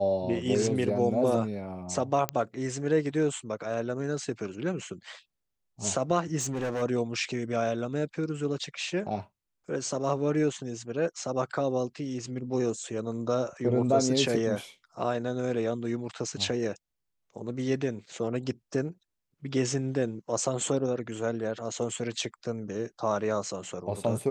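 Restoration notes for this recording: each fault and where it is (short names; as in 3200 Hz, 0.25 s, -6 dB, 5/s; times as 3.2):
2.29 pop -11 dBFS
6.39–6.83 clipped -27.5 dBFS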